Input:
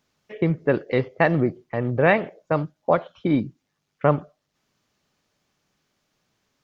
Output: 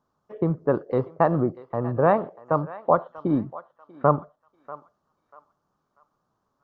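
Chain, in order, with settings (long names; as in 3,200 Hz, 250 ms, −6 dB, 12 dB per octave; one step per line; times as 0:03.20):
high shelf with overshoot 1,600 Hz −11.5 dB, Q 3
feedback echo with a high-pass in the loop 640 ms, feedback 37%, high-pass 940 Hz, level −14.5 dB
level −2.5 dB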